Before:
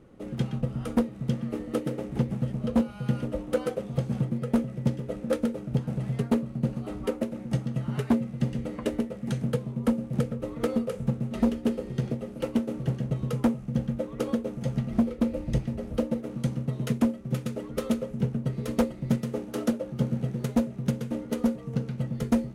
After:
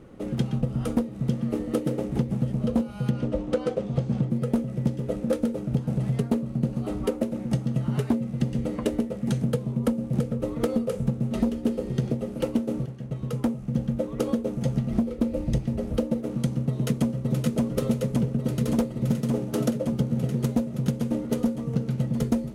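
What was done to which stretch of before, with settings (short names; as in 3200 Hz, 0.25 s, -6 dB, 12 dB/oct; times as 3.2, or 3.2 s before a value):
3.1–4.3 LPF 5900 Hz
12.86–14.49 fade in equal-power, from -18 dB
16.34–17.45 echo throw 0.57 s, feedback 80%, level -2 dB
whole clip: dynamic EQ 1800 Hz, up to -5 dB, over -48 dBFS, Q 0.71; compressor, threshold -26 dBFS; gain +6 dB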